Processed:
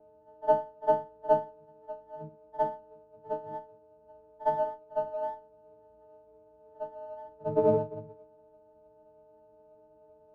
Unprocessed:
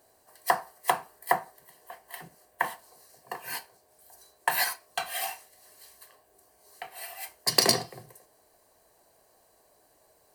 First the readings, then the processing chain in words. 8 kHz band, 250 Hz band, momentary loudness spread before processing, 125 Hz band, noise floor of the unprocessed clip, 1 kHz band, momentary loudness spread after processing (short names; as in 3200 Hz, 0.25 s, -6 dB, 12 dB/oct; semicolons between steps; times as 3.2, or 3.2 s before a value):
under -40 dB, +3.5 dB, 20 LU, +3.5 dB, -65 dBFS, -0.5 dB, 18 LU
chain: frequency quantiser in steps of 6 st; steep low-pass 800 Hz 48 dB/oct; in parallel at -1.5 dB: limiter -24.5 dBFS, peak gain reduction 11 dB; on the sum: pre-echo 57 ms -18.5 dB; running maximum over 3 samples